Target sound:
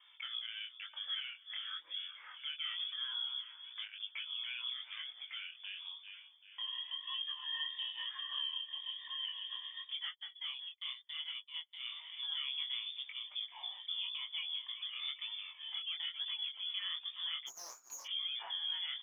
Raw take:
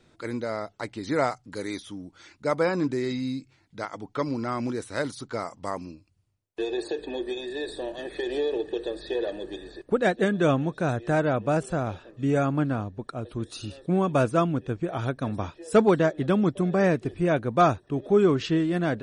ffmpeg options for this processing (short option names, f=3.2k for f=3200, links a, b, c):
-filter_complex "[0:a]aecho=1:1:390|780|1170|1560:0.1|0.049|0.024|0.0118,acompressor=threshold=-29dB:ratio=8,alimiter=level_in=6dB:limit=-24dB:level=0:latency=1:release=380,volume=-6dB,lowpass=f=3.1k:t=q:w=0.5098,lowpass=f=3.1k:t=q:w=0.6013,lowpass=f=3.1k:t=q:w=0.9,lowpass=f=3.1k:t=q:w=2.563,afreqshift=-3600,flanger=delay=2.2:depth=7.6:regen=-29:speed=0.13:shape=sinusoidal,asplit=3[a][b][c];[a]afade=t=out:st=17.46:d=0.02[d];[b]aeval=exprs='abs(val(0))':c=same,afade=t=in:st=17.46:d=0.02,afade=t=out:st=18.04:d=0.02[e];[c]afade=t=in:st=18.04:d=0.02[f];[d][e][f]amix=inputs=3:normalize=0,highpass=f=980:t=q:w=1.5,asplit=3[g][h][i];[g]afade=t=out:st=10.08:d=0.02[j];[h]agate=range=-38dB:threshold=-40dB:ratio=16:detection=peak,afade=t=in:st=10.08:d=0.02,afade=t=out:st=11.79:d=0.02[k];[i]afade=t=in:st=11.79:d=0.02[l];[j][k][l]amix=inputs=3:normalize=0,flanger=delay=18.5:depth=7.6:speed=0.98,volume=3.5dB"